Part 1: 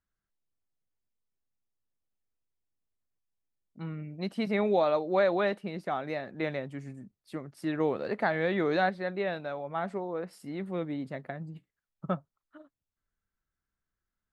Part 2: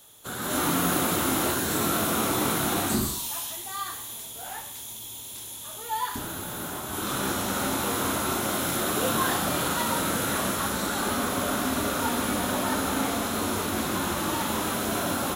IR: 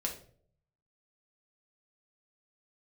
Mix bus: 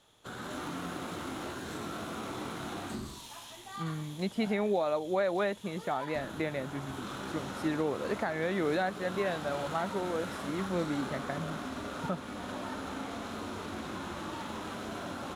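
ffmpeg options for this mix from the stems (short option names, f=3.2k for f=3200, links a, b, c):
-filter_complex "[0:a]volume=1dB[a];[1:a]acompressor=threshold=-33dB:ratio=2.5,acrusher=bits=3:mode=log:mix=0:aa=0.000001,adynamicsmooth=sensitivity=5:basefreq=4.5k,volume=-5dB[b];[a][b]amix=inputs=2:normalize=0,alimiter=limit=-20.5dB:level=0:latency=1:release=383"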